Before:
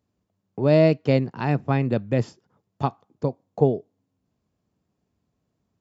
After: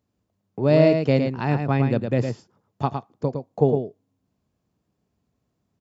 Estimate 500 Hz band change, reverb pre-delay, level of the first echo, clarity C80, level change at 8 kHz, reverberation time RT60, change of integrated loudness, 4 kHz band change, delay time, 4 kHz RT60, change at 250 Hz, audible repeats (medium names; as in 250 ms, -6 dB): +1.0 dB, no reverb, -6.0 dB, no reverb, no reading, no reverb, +1.0 dB, +1.0 dB, 110 ms, no reverb, +1.0 dB, 1